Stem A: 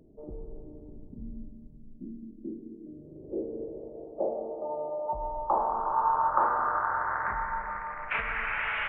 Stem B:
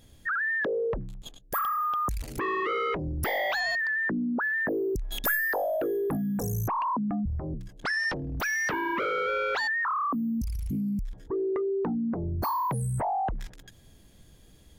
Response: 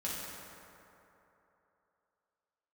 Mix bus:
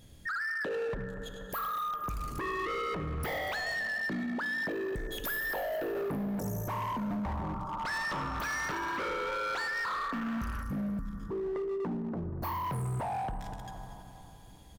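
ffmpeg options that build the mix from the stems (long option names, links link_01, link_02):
-filter_complex "[0:a]highshelf=frequency=1800:width_type=q:width=3:gain=-9.5,aecho=1:1:5.2:0.5,adelay=1750,volume=-10.5dB,asplit=2[link_01][link_02];[link_02]volume=-14dB[link_03];[1:a]equalizer=frequency=130:width_type=o:width=1.1:gain=4,volume=-2.5dB,asplit=3[link_04][link_05][link_06];[link_05]volume=-8dB[link_07];[link_06]volume=-12.5dB[link_08];[2:a]atrim=start_sample=2205[link_09];[link_03][link_07]amix=inputs=2:normalize=0[link_10];[link_10][link_09]afir=irnorm=-1:irlink=0[link_11];[link_08]aecho=0:1:240|480|720|960|1200|1440:1|0.41|0.168|0.0689|0.0283|0.0116[link_12];[link_01][link_04][link_11][link_12]amix=inputs=4:normalize=0,asoftclip=type=hard:threshold=-26dB,alimiter=level_in=7dB:limit=-24dB:level=0:latency=1:release=166,volume=-7dB"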